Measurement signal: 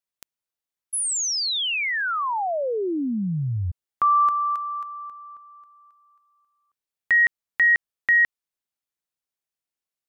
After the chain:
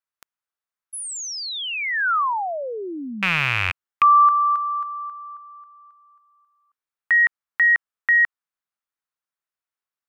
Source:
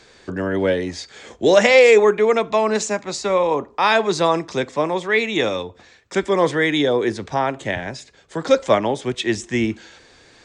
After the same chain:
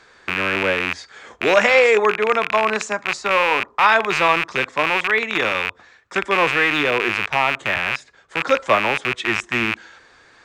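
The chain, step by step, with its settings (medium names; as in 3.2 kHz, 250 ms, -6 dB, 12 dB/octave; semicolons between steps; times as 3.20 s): rattle on loud lows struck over -37 dBFS, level -7 dBFS; peaking EQ 1.3 kHz +12 dB 1.5 oct; trim -6.5 dB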